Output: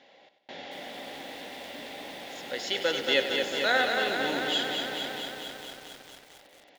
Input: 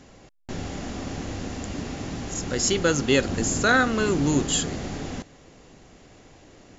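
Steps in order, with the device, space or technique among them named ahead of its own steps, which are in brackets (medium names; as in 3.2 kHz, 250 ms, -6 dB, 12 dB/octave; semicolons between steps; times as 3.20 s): phone earpiece (cabinet simulation 330–4200 Hz, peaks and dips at 370 Hz -4 dB, 560 Hz +7 dB, 810 Hz +6 dB, 1.2 kHz -9 dB, 2 kHz +6 dB, 3.5 kHz +8 dB); tilt EQ +1.5 dB/octave; feedback delay 96 ms, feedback 53%, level -11.5 dB; bit-crushed delay 225 ms, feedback 80%, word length 7-bit, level -5 dB; trim -6.5 dB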